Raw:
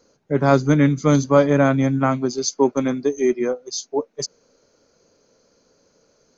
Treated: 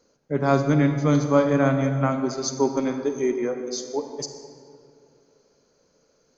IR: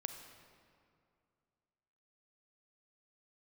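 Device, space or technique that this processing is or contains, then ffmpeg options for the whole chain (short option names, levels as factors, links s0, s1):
stairwell: -filter_complex "[1:a]atrim=start_sample=2205[s0];[0:a][s0]afir=irnorm=-1:irlink=0,asettb=1/sr,asplit=3[s1][s2][s3];[s1]atrim=end=0.704[s4];[s2]atrim=start=0.7:end=1.24,asetpts=PTS-STARTPTS,afade=t=in:d=0.004:c=qsin,afade=t=out:st=0.536:d=0.004:c=qsin,lowpass=f=6200:w=0.5412,lowpass=f=6200:w=1.3066[s5];[s3]atrim=start=1.236[s6];[s4][s5]acrossfade=d=0.004:c1=hsin:c2=qsin[s7];[s7][s6]acrossfade=d=0.004:c1=qsin:c2=hsin,volume=0.75"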